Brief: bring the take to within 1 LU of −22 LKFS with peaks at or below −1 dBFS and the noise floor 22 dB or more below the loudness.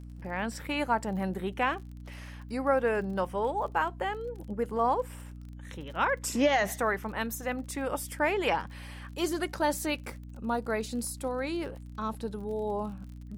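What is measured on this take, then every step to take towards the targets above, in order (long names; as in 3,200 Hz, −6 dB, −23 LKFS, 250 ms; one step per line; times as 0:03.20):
crackle rate 36 per second; mains hum 60 Hz; hum harmonics up to 300 Hz; level of the hum −41 dBFS; integrated loudness −31.0 LKFS; sample peak −14.0 dBFS; target loudness −22.0 LKFS
→ click removal
mains-hum notches 60/120/180/240/300 Hz
level +9 dB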